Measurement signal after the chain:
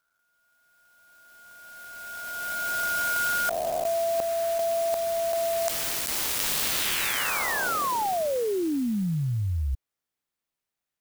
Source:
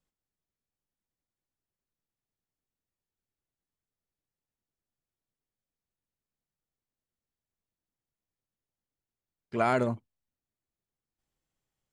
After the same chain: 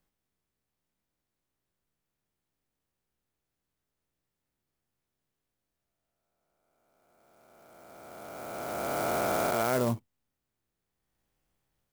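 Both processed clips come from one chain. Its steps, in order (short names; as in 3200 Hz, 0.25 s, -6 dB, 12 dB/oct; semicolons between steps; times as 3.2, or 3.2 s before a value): spectral swells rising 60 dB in 2.97 s; reverse; compressor 6:1, threshold -28 dBFS; reverse; clock jitter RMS 0.054 ms; gain +3.5 dB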